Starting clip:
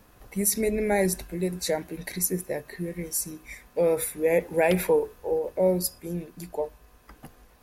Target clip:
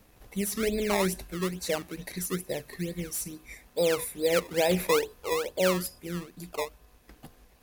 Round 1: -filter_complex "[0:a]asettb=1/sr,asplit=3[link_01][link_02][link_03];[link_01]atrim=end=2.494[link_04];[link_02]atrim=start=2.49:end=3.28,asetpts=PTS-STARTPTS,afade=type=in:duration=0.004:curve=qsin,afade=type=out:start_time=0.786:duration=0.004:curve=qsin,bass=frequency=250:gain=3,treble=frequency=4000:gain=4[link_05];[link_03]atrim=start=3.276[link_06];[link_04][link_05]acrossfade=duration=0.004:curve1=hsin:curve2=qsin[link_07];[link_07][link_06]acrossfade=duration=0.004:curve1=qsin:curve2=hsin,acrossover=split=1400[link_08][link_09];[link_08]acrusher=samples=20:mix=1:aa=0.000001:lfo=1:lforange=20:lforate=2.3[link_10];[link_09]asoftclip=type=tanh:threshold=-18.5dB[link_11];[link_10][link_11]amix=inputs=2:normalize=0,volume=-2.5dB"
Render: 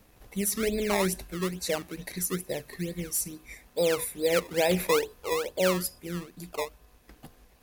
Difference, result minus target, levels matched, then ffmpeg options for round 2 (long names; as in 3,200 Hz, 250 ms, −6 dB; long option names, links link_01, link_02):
soft clipping: distortion −8 dB
-filter_complex "[0:a]asettb=1/sr,asplit=3[link_01][link_02][link_03];[link_01]atrim=end=2.494[link_04];[link_02]atrim=start=2.49:end=3.28,asetpts=PTS-STARTPTS,afade=type=in:duration=0.004:curve=qsin,afade=type=out:start_time=0.786:duration=0.004:curve=qsin,bass=frequency=250:gain=3,treble=frequency=4000:gain=4[link_05];[link_03]atrim=start=3.276[link_06];[link_04][link_05]acrossfade=duration=0.004:curve1=hsin:curve2=qsin[link_07];[link_07][link_06]acrossfade=duration=0.004:curve1=qsin:curve2=hsin,acrossover=split=1400[link_08][link_09];[link_08]acrusher=samples=20:mix=1:aa=0.000001:lfo=1:lforange=20:lforate=2.3[link_10];[link_09]asoftclip=type=tanh:threshold=-27dB[link_11];[link_10][link_11]amix=inputs=2:normalize=0,volume=-2.5dB"